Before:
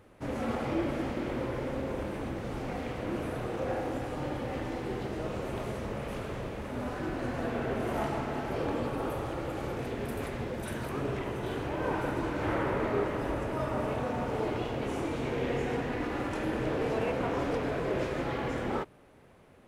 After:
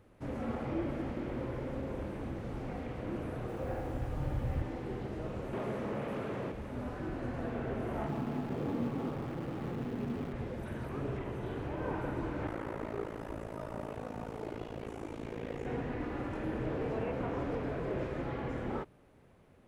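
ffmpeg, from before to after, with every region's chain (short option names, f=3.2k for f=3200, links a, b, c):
-filter_complex "[0:a]asettb=1/sr,asplit=3[a][b][c];[a]atrim=end=3.484[d];[b]atrim=start=3.48:end=4.62,asetpts=PTS-STARTPTS,afade=t=in:d=0.004:c=qsin,afade=t=out:st=1.136:d=0.004:c=qsin,asubboost=boost=12:cutoff=130,acrusher=bits=7:mix=0:aa=0.5[e];[c]atrim=start=4.616[f];[d][e]acrossfade=d=0.004:c1=hsin:c2=qsin[g];[g][f]acrossfade=d=0.004:c1=qsin:c2=hsin,asettb=1/sr,asplit=3[h][i][j];[h]atrim=end=5.534[k];[i]atrim=start=5.53:end=6.52,asetpts=PTS-STARTPTS,afade=t=in:d=0.004:c=qsin,afade=t=out:st=0.986:d=0.004:c=qsin,highpass=170,aeval=exprs='0.0531*sin(PI/2*1.41*val(0)/0.0531)':c=same[l];[j]atrim=start=6.516[m];[k][l]acrossfade=d=0.004:c1=hsin:c2=qsin[n];[n][m]acrossfade=d=0.004:c1=qsin:c2=hsin,asettb=1/sr,asplit=3[o][p][q];[o]atrim=end=8.084[r];[p]atrim=start=8.08:end=10.33,asetpts=PTS-STARTPTS,afade=t=in:d=0.004:c=qsin,afade=t=out:st=2.246:d=0.004:c=qsin,highpass=100,equalizer=f=160:t=q:w=4:g=8,equalizer=f=240:t=q:w=4:g=7,equalizer=f=580:t=q:w=4:g=-4,equalizer=f=1.5k:t=q:w=4:g=-5,equalizer=f=2.1k:t=q:w=4:g=-9,lowpass=f=6.4k:w=0.5412,lowpass=f=6.4k:w=1.3066,bandreject=f=930:w=24,acrusher=bits=7:dc=4:mix=0:aa=0.000001[s];[q]atrim=start=10.326[t];[r][s]acrossfade=d=0.004:c1=hsin:c2=qsin[u];[u][t]acrossfade=d=0.004:c1=qsin:c2=hsin,asettb=1/sr,asplit=3[v][w][x];[v]atrim=end=12.474[y];[w]atrim=start=12.47:end=15.66,asetpts=PTS-STARTPTS,afade=t=in:d=0.004:c=qsin,afade=t=out:st=3.186:d=0.004:c=qsin,bass=f=250:g=-3,treble=f=4k:g=10,tremolo=f=55:d=0.889[z];[x]atrim=start=15.656[aa];[y][z]acrossfade=d=0.004:c1=hsin:c2=qsin[ab];[ab][aa]acrossfade=d=0.004:c1=qsin:c2=hsin,acrossover=split=2700[ac][ad];[ad]acompressor=threshold=-56dB:ratio=4:attack=1:release=60[ae];[ac][ae]amix=inputs=2:normalize=0,lowshelf=f=290:g=6,volume=-7dB"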